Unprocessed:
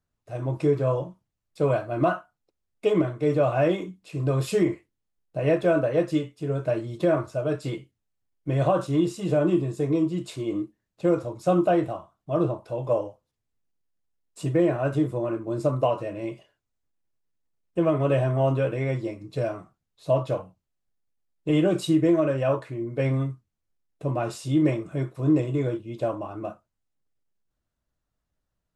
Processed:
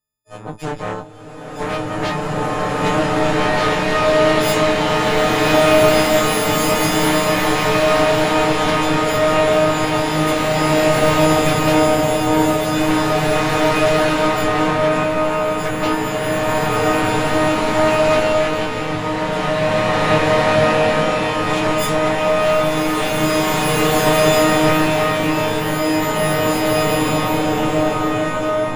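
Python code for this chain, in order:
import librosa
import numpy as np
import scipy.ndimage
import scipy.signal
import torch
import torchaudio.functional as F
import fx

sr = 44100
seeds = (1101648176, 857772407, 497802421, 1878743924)

y = fx.freq_snap(x, sr, grid_st=6)
y = fx.cheby_harmonics(y, sr, harmonics=(3, 8), levels_db=(-20, -11), full_scale_db=-7.0)
y = fx.rev_bloom(y, sr, seeds[0], attack_ms=2390, drr_db=-11.0)
y = y * 10.0 ** (-4.5 / 20.0)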